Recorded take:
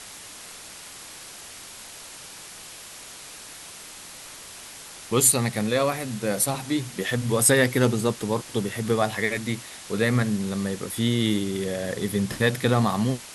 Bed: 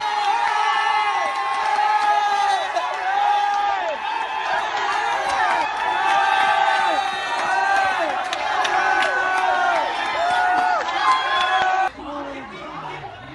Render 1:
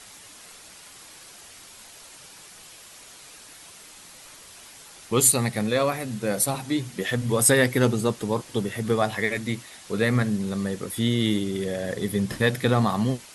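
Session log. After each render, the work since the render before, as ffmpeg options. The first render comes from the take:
-af "afftdn=nr=6:nf=-42"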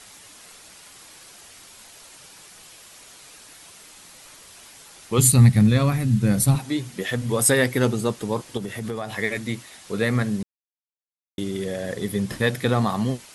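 -filter_complex "[0:a]asplit=3[a][b][c];[a]afade=t=out:st=5.18:d=0.02[d];[b]asubboost=boost=11:cutoff=160,afade=t=in:st=5.18:d=0.02,afade=t=out:st=6.57:d=0.02[e];[c]afade=t=in:st=6.57:d=0.02[f];[d][e][f]amix=inputs=3:normalize=0,asettb=1/sr,asplit=3[g][h][i];[g]atrim=end=8.574[j];[h]atrim=start=8.57:end=9.17,asetpts=PTS-STARTPTS,afade=t=in:d=0.004:c=qsin,afade=t=out:st=0.596:d=0.004:c=qsin,acompressor=threshold=-25dB:ratio=6:attack=3.2:release=140:knee=1:detection=peak[k];[i]atrim=start=9.166[l];[j][k]acrossfade=d=0.004:c1=hsin:c2=qsin[m];[m][l]acrossfade=d=0.004:c1=qsin:c2=hsin,asplit=3[n][o][p];[n]atrim=end=10.43,asetpts=PTS-STARTPTS,afade=t=out:st=10.426:d=0.004:c=hsin[q];[o]atrim=start=10.43:end=11.38,asetpts=PTS-STARTPTS,volume=0[r];[p]atrim=start=11.38,asetpts=PTS-STARTPTS,afade=t=in:d=0.004:c=hsin[s];[q][r][s]concat=n=3:v=0:a=1"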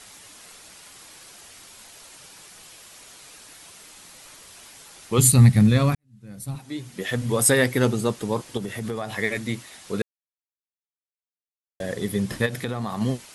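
-filter_complex "[0:a]asplit=3[a][b][c];[a]afade=t=out:st=12.45:d=0.02[d];[b]acompressor=threshold=-24dB:ratio=6:attack=3.2:release=140:knee=1:detection=peak,afade=t=in:st=12.45:d=0.02,afade=t=out:st=13:d=0.02[e];[c]afade=t=in:st=13:d=0.02[f];[d][e][f]amix=inputs=3:normalize=0,asplit=4[g][h][i][j];[g]atrim=end=5.95,asetpts=PTS-STARTPTS,afade=t=out:st=5.946:d=0.004:c=hsin[k];[h]atrim=start=5.95:end=10.02,asetpts=PTS-STARTPTS,afade=t=in:d=1.21:c=qua,afade=t=out:st=4.066:d=0.004:c=hsin[l];[i]atrim=start=10.02:end=11.8,asetpts=PTS-STARTPTS,volume=0[m];[j]atrim=start=11.8,asetpts=PTS-STARTPTS,afade=t=in:d=0.004:c=hsin[n];[k][l][m][n]concat=n=4:v=0:a=1"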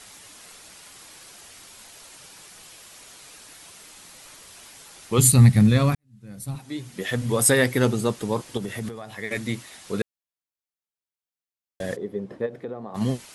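-filter_complex "[0:a]asplit=3[a][b][c];[a]afade=t=out:st=11.95:d=0.02[d];[b]bandpass=f=450:t=q:w=1.5,afade=t=in:st=11.95:d=0.02,afade=t=out:st=12.94:d=0.02[e];[c]afade=t=in:st=12.94:d=0.02[f];[d][e][f]amix=inputs=3:normalize=0,asplit=3[g][h][i];[g]atrim=end=8.892[j];[h]atrim=start=8.888:end=9.312,asetpts=PTS-STARTPTS,volume=-7.5dB[k];[i]atrim=start=9.308[l];[j][k]acrossfade=d=0.004:c1=hsin:c2=hsin[m];[m][l]acrossfade=d=0.004:c1=hsin:c2=hsin"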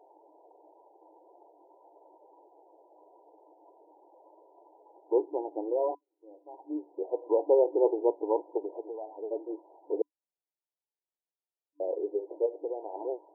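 -af "afftfilt=real='re*between(b*sr/4096,300,1000)':imag='im*between(b*sr/4096,300,1000)':win_size=4096:overlap=0.75"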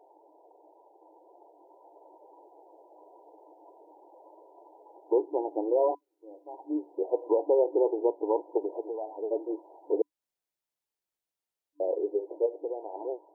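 -af "dynaudnorm=f=310:g=11:m=4dB,alimiter=limit=-15dB:level=0:latency=1:release=287"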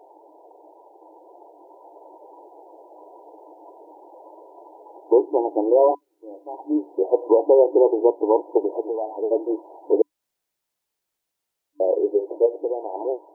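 -af "volume=9dB"

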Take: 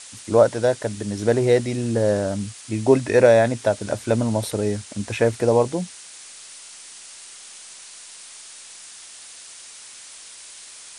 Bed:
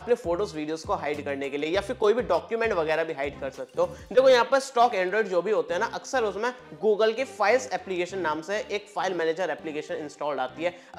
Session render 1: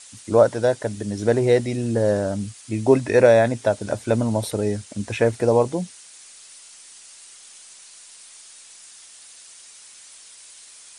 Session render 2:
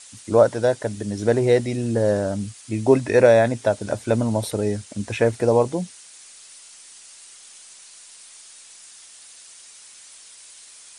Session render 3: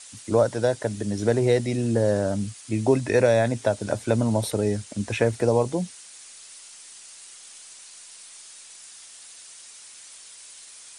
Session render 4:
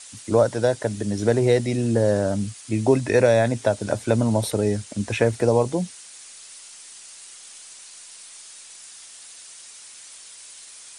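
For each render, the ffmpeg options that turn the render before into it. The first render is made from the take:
-af "afftdn=nr=6:nf=-42"
-af anull
-filter_complex "[0:a]acrossover=split=180|3000[a][b][c];[b]acompressor=threshold=-20dB:ratio=2[d];[a][d][c]amix=inputs=3:normalize=0"
-af "volume=2dB"

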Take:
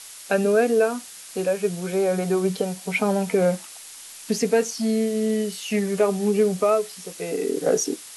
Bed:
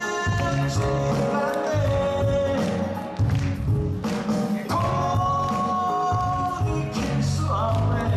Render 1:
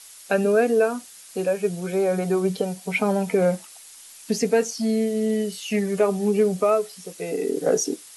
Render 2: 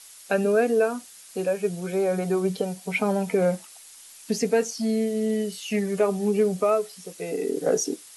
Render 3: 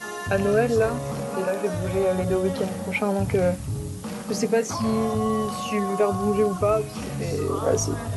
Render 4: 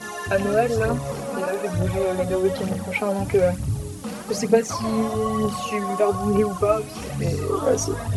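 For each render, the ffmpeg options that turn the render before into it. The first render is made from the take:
-af "afftdn=nr=6:nf=-42"
-af "volume=-2dB"
-filter_complex "[1:a]volume=-7dB[a];[0:a][a]amix=inputs=2:normalize=0"
-af "aphaser=in_gain=1:out_gain=1:delay=4.2:decay=0.53:speed=1.1:type=triangular"

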